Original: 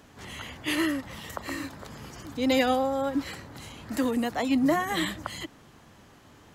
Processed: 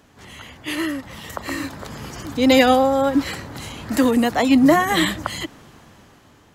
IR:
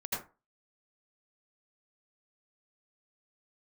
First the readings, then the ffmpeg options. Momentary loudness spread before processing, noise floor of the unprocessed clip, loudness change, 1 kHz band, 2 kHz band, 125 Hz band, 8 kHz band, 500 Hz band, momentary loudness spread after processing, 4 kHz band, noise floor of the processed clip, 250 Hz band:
18 LU, -55 dBFS, +10.0 dB, +9.5 dB, +8.5 dB, +9.0 dB, +8.5 dB, +9.5 dB, 19 LU, +8.5 dB, -52 dBFS, +9.0 dB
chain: -af "dynaudnorm=f=560:g=5:m=11dB"

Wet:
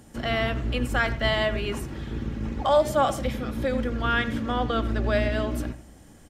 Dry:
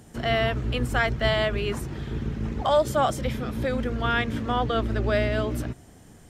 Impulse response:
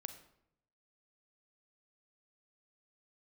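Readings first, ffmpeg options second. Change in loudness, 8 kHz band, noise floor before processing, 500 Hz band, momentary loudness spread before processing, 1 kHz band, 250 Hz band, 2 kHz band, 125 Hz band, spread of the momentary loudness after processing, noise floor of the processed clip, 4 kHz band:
-0.5 dB, -0.5 dB, -50 dBFS, -0.5 dB, 9 LU, 0.0 dB, +0.5 dB, 0.0 dB, -2.0 dB, 10 LU, -50 dBFS, -0.5 dB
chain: -filter_complex "[0:a]aecho=1:1:3.6:0.3,asplit=2[a][b];[b]adelay=90,highpass=300,lowpass=3.4k,asoftclip=type=hard:threshold=-17dB,volume=-14dB[c];[a][c]amix=inputs=2:normalize=0,asplit=2[d][e];[1:a]atrim=start_sample=2205[f];[e][f]afir=irnorm=-1:irlink=0,volume=-1.5dB[g];[d][g]amix=inputs=2:normalize=0,volume=-4.5dB"

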